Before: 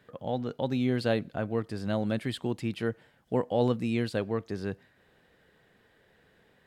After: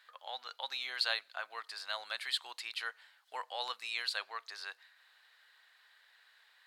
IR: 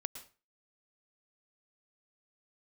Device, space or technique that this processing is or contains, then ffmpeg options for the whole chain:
headphones lying on a table: -af "highpass=frequency=1000:width=0.5412,highpass=frequency=1000:width=1.3066,equalizer=frequency=4200:width_type=o:width=0.4:gain=9.5,volume=1.5dB"

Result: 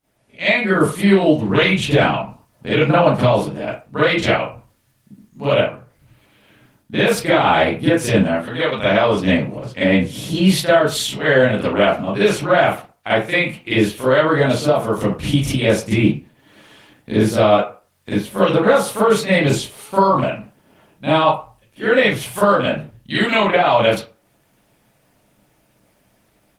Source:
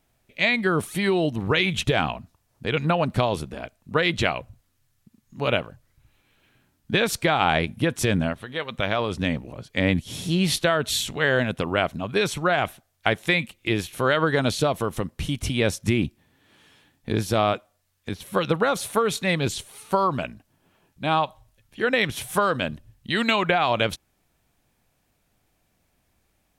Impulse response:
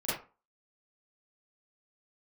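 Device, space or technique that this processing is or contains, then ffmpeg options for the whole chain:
far-field microphone of a smart speaker: -filter_complex "[1:a]atrim=start_sample=2205[link_01];[0:a][link_01]afir=irnorm=-1:irlink=0,highpass=frequency=89:poles=1,dynaudnorm=framelen=150:gausssize=3:maxgain=7.5dB,volume=-1dB" -ar 48000 -c:a libopus -b:a 20k

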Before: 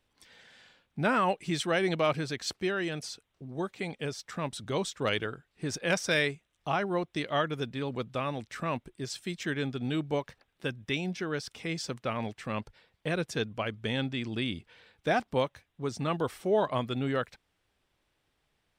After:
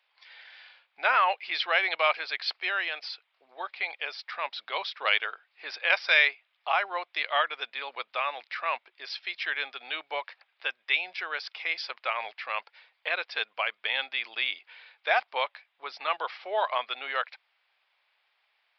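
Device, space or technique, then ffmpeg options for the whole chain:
musical greeting card: -af "aresample=11025,aresample=44100,highpass=frequency=710:width=0.5412,highpass=frequency=710:width=1.3066,equalizer=frequency=2300:width_type=o:width=0.41:gain=6,volume=5dB"

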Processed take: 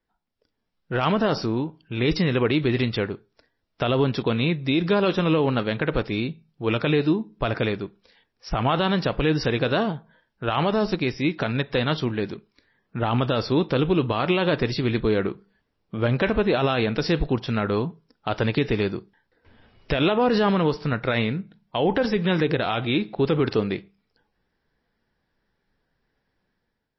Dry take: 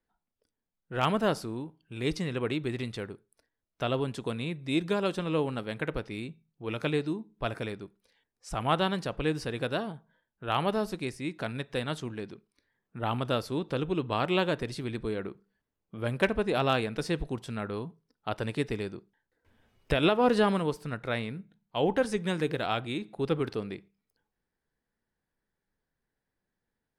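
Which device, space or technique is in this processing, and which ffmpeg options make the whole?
low-bitrate web radio: -filter_complex "[0:a]asettb=1/sr,asplit=3[link_01][link_02][link_03];[link_01]atrim=end=5.734[link_04];[link_02]atrim=start=5.73:end=6.68,asetpts=PTS-STARTPTS,afade=type=in:duration=0.004:curve=qsin,afade=type=out:start_time=0.946:duration=0.004:curve=qsin,equalizer=frequency=2100:width_type=o:width=0.4:gain=-2[link_05];[link_03]atrim=start=6.676[link_06];[link_04][link_05]acrossfade=duration=0.004:curve1=hsin:curve2=qsin[link_07];[link_07][link_06]acrossfade=duration=0.004:curve1=qsin:curve2=hsin,dynaudnorm=framelen=110:gausssize=9:maxgain=8dB,alimiter=limit=-16dB:level=0:latency=1:release=40,volume=4dB" -ar 16000 -c:a libmp3lame -b:a 24k

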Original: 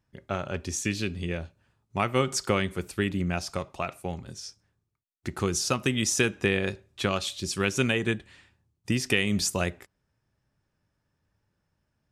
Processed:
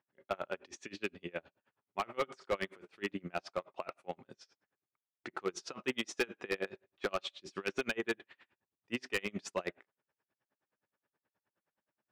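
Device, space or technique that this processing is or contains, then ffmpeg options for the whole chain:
helicopter radio: -af "highpass=360,lowpass=2700,aeval=exprs='val(0)*pow(10,-32*(0.5-0.5*cos(2*PI*9.5*n/s))/20)':channel_layout=same,asoftclip=type=hard:threshold=-27.5dB,volume=1.5dB"

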